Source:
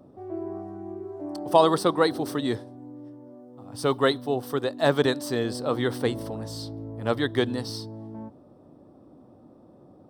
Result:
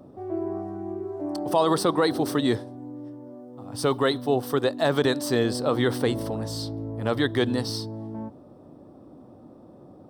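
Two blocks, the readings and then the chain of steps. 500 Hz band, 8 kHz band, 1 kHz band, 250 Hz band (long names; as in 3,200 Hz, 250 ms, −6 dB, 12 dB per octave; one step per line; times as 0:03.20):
+0.5 dB, +3.5 dB, −1.0 dB, +2.5 dB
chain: brickwall limiter −15 dBFS, peak gain reduction 10 dB
level +4 dB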